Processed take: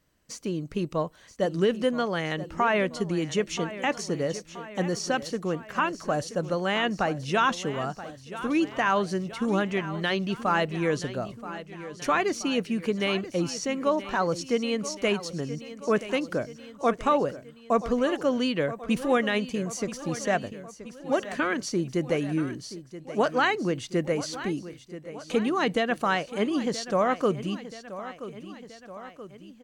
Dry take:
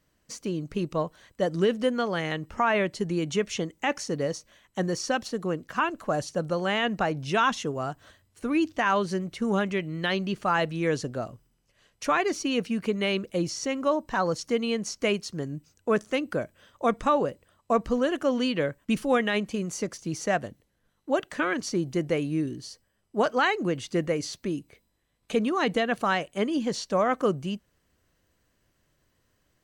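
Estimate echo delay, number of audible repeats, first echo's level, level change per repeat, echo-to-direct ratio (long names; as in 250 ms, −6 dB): 978 ms, 3, −14.0 dB, −4.5 dB, −12.5 dB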